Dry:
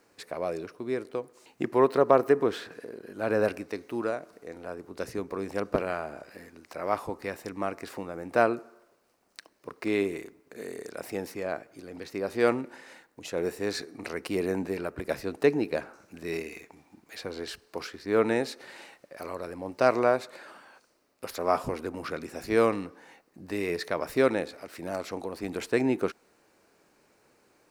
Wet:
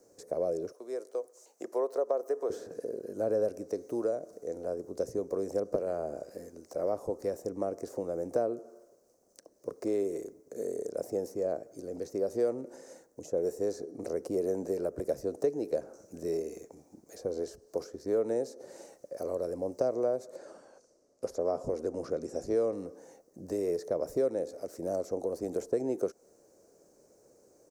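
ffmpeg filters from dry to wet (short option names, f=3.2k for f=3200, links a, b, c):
-filter_complex "[0:a]asettb=1/sr,asplit=3[a][b][c];[a]atrim=end=0.724[d];[b]atrim=start=0.72:end=2.5,asetpts=PTS-STARTPTS,afade=t=in:d=0.004:c=qsin,afade=t=out:st=1.776:d=0.004:c=qsin,highpass=710[e];[c]atrim=start=2.496[f];[d][e]acrossfade=d=0.004:c1=hsin:c2=qsin[g];[g][f]acrossfade=d=0.004:c1=qsin:c2=hsin,asettb=1/sr,asplit=3[h][i][j];[h]atrim=end=20.364[k];[i]atrim=start=20.36:end=22.73,asetpts=PTS-STARTPTS,afade=t=in:d=0.004:c=qsin,afade=t=out:st=2.366:d=0.004:c=qsin,lowpass=7.8k[l];[j]atrim=start=22.726[m];[k][l]acrossfade=d=0.004:c1=hsin:c2=qsin[n];[n][m]acrossfade=d=0.004:c1=qsin:c2=hsin,firequalizer=gain_entry='entry(260,0);entry(530,8);entry(880,-8);entry(2500,-19);entry(3700,-14);entry(6100,7);entry(9400,0)':delay=0.05:min_phase=1,acrossover=split=380|1100[o][p][q];[o]acompressor=threshold=-38dB:ratio=4[r];[p]acompressor=threshold=-30dB:ratio=4[s];[q]acompressor=threshold=-52dB:ratio=4[t];[r][s][t]amix=inputs=3:normalize=0"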